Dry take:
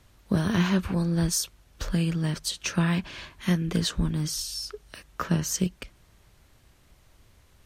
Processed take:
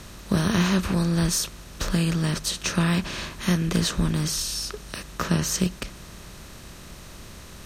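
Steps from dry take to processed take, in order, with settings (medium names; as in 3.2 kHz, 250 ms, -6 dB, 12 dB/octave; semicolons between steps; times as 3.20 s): spectral levelling over time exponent 0.6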